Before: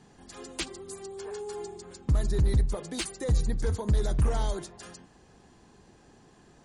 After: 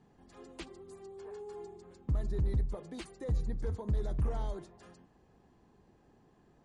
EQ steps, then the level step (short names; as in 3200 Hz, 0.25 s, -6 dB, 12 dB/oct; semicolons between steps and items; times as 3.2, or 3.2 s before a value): bell 1500 Hz -3 dB 0.22 oct; high shelf 2300 Hz -9 dB; high shelf 5500 Hz -6.5 dB; -7.0 dB